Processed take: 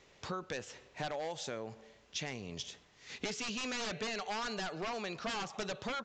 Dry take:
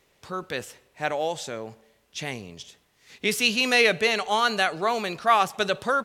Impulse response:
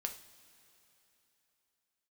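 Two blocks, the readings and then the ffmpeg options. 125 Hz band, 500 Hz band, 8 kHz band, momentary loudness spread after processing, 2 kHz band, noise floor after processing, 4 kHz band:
-7.5 dB, -14.5 dB, -9.0 dB, 8 LU, -16.5 dB, -64 dBFS, -13.5 dB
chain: -af "aeval=exprs='0.0891*(abs(mod(val(0)/0.0891+3,4)-2)-1)':c=same,acompressor=threshold=-39dB:ratio=6,aresample=16000,aresample=44100,volume=2dB"

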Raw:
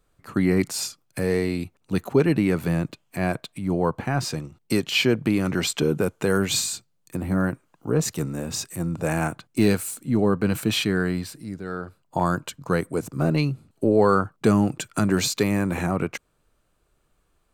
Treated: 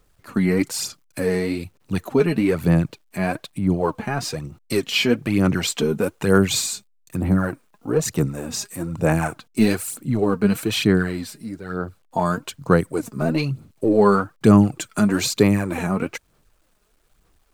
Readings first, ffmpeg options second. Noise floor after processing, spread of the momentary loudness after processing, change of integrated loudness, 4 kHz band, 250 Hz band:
-61 dBFS, 12 LU, +2.5 dB, +1.5 dB, +3.0 dB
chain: -af "aphaser=in_gain=1:out_gain=1:delay=4.9:decay=0.57:speed=1.1:type=sinusoidal,acrusher=bits=10:mix=0:aa=0.000001"

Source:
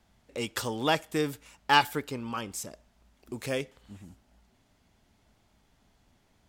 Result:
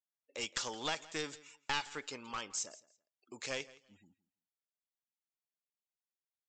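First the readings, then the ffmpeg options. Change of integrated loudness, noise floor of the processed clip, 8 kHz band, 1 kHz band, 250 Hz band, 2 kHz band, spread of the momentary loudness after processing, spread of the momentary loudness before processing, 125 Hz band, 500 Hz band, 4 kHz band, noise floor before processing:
-10.0 dB, under -85 dBFS, -1.0 dB, -14.0 dB, -15.0 dB, -9.5 dB, 12 LU, 19 LU, -17.0 dB, -12.0 dB, -7.0 dB, -68 dBFS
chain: -filter_complex "[0:a]highpass=f=1.3k:p=1,afftdn=nr=35:nf=-59,equalizer=f=4.8k:w=0.37:g=-4,acompressor=threshold=-33dB:ratio=4,aresample=16000,aeval=exprs='clip(val(0),-1,0.0112)':c=same,aresample=44100,crystalizer=i=2:c=0,asplit=2[a][b];[b]aecho=0:1:167|334:0.0944|0.0179[c];[a][c]amix=inputs=2:normalize=0"

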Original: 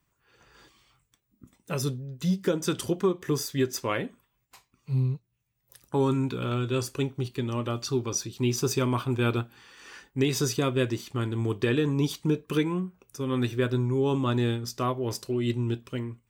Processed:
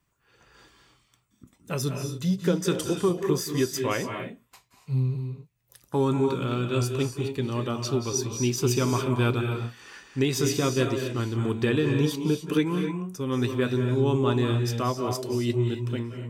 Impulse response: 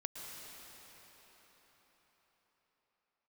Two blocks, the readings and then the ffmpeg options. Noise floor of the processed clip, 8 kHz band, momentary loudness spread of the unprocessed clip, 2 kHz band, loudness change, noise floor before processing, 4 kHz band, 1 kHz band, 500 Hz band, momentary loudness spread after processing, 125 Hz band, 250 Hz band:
-68 dBFS, +2.0 dB, 7 LU, +1.5 dB, +2.0 dB, -76 dBFS, +1.5 dB, +2.0 dB, +2.0 dB, 7 LU, +2.0 dB, +2.0 dB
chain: -filter_complex "[1:a]atrim=start_sample=2205,afade=t=out:st=0.23:d=0.01,atrim=end_sample=10584,asetrate=27342,aresample=44100[a];[0:a][a]afir=irnorm=-1:irlink=0,volume=2dB"

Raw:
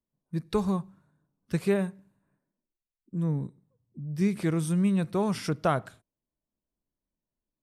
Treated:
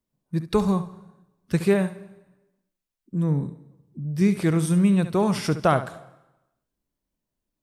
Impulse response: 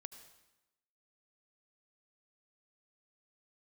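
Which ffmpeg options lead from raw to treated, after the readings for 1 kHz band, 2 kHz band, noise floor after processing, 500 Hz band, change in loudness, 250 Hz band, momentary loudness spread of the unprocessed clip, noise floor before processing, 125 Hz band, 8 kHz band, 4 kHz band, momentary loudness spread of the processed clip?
+6.0 dB, +6.0 dB, -84 dBFS, +5.5 dB, +5.5 dB, +5.5 dB, 12 LU, under -85 dBFS, +5.5 dB, +6.0 dB, +6.0 dB, 12 LU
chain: -filter_complex "[0:a]asplit=2[a][b];[1:a]atrim=start_sample=2205,adelay=69[c];[b][c]afir=irnorm=-1:irlink=0,volume=-6dB[d];[a][d]amix=inputs=2:normalize=0,volume=5.5dB"

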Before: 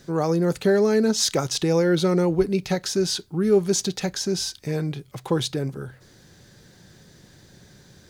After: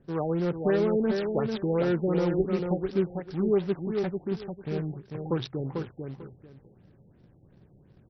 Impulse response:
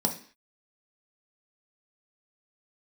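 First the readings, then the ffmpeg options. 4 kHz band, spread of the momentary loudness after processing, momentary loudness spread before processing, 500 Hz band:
-17.5 dB, 11 LU, 9 LU, -5.0 dB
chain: -filter_complex "[0:a]adynamicsmooth=sensitivity=2.5:basefreq=700,acrusher=bits=4:mode=log:mix=0:aa=0.000001,asplit=2[a][b];[b]aecho=0:1:445|890|1335:0.562|0.112|0.0225[c];[a][c]amix=inputs=2:normalize=0,afftfilt=real='re*lt(b*sr/1024,830*pow(6100/830,0.5+0.5*sin(2*PI*2.8*pts/sr)))':imag='im*lt(b*sr/1024,830*pow(6100/830,0.5+0.5*sin(2*PI*2.8*pts/sr)))':win_size=1024:overlap=0.75,volume=-6dB"

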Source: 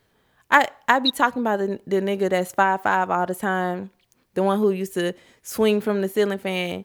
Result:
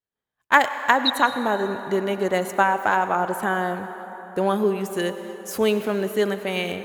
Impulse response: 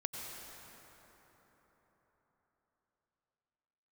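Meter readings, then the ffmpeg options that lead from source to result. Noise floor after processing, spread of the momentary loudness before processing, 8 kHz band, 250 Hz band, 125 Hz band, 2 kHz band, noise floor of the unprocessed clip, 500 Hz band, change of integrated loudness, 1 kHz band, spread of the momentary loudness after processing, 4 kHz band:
under -85 dBFS, 9 LU, 0.0 dB, -2.0 dB, -2.0 dB, +0.5 dB, -66 dBFS, -1.0 dB, -0.5 dB, 0.0 dB, 10 LU, 0.0 dB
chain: -filter_complex "[0:a]agate=range=-33dB:threshold=-48dB:ratio=3:detection=peak,asplit=2[a][b];[b]highpass=f=370:p=1[c];[1:a]atrim=start_sample=2205[d];[c][d]afir=irnorm=-1:irlink=0,volume=-4dB[e];[a][e]amix=inputs=2:normalize=0,volume=-3.5dB"

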